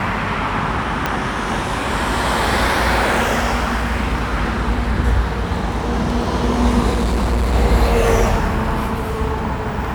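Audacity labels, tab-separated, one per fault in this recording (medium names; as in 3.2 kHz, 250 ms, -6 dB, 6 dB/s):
1.060000	1.060000	pop -4 dBFS
6.900000	7.550000	clipped -14 dBFS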